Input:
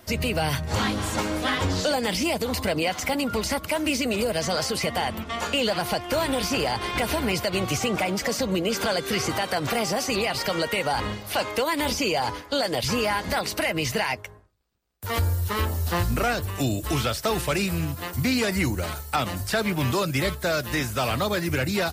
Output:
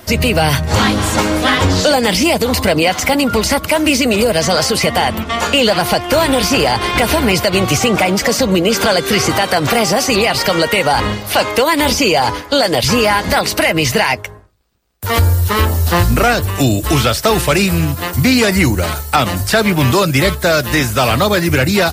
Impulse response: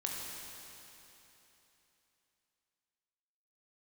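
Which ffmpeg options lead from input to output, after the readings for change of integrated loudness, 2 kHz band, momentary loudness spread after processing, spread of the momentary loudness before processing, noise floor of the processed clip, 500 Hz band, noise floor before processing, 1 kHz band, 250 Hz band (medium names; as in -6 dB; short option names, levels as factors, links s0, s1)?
+12.0 dB, +12.0 dB, 3 LU, 3 LU, -28 dBFS, +12.0 dB, -40 dBFS, +12.0 dB, +12.0 dB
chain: -af "acontrast=72,volume=1.88"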